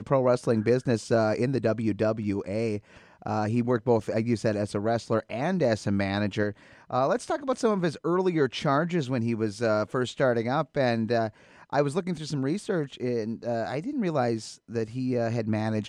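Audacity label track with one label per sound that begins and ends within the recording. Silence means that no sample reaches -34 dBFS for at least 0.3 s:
3.260000	6.520000	sound
6.900000	11.290000	sound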